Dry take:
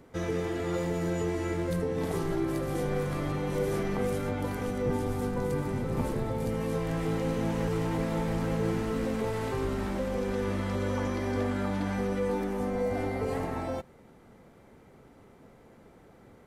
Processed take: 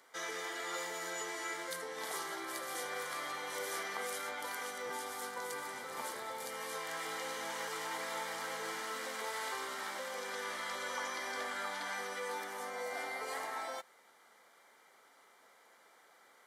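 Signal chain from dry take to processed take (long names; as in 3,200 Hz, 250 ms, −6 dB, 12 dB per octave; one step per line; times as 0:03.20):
high-pass filter 1,100 Hz 12 dB per octave
parametric band 7,200 Hz +3 dB 2.8 octaves
notch filter 2,600 Hz, Q 5.6
level +1.5 dB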